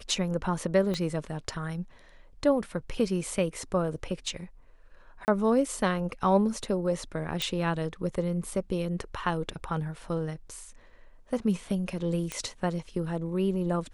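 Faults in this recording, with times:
0.94 s: pop -19 dBFS
5.25–5.28 s: dropout 29 ms
7.42 s: pop
12.32 s: pop -17 dBFS

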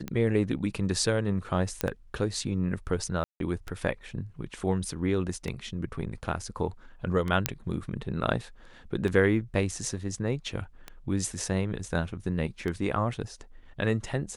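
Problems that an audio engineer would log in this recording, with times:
tick 33 1/3 rpm -20 dBFS
1.81 s: pop -10 dBFS
3.24–3.40 s: dropout 162 ms
7.46 s: pop -5 dBFS

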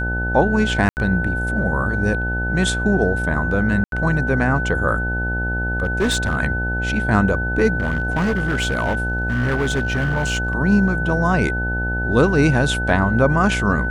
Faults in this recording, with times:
buzz 60 Hz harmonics 15 -24 dBFS
whine 1.5 kHz -23 dBFS
0.89–0.97 s: dropout 79 ms
3.84–3.92 s: dropout 82 ms
5.83–6.37 s: clipped -14 dBFS
7.78–10.55 s: clipped -15.5 dBFS

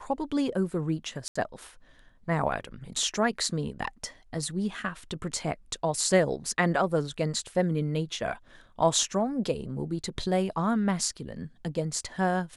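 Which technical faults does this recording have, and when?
1.28–1.35 s: dropout 75 ms

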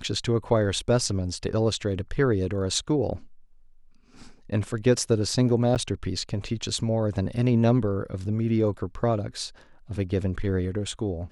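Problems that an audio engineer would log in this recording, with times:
5.75–5.76 s: dropout 8.1 ms

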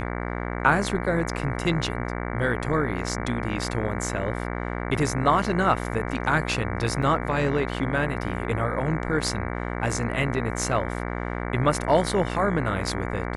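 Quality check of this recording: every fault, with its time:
buzz 60 Hz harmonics 38 -30 dBFS
7.02 s: dropout 4.7 ms

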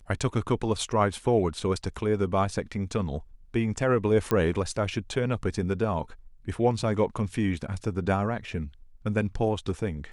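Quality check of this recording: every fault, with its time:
4.31 s: pop -13 dBFS

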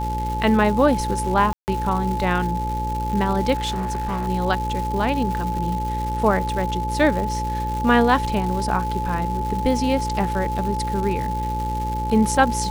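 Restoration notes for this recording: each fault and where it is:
buzz 60 Hz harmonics 9 -27 dBFS
crackle 360 per s -28 dBFS
whine 860 Hz -25 dBFS
1.53–1.68 s: dropout 149 ms
3.54–4.28 s: clipped -21 dBFS

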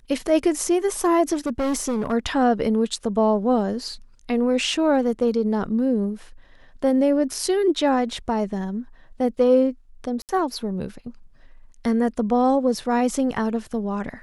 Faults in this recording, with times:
1.33–2.13 s: clipped -20 dBFS
10.22–10.29 s: dropout 68 ms

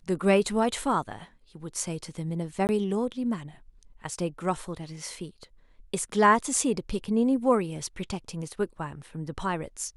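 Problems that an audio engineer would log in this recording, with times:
2.67–2.69 s: dropout 19 ms

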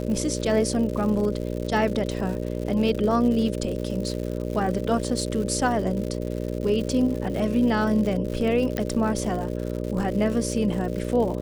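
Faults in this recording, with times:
buzz 60 Hz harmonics 10 -29 dBFS
crackle 150 per s -31 dBFS
8.77 s: pop -13 dBFS

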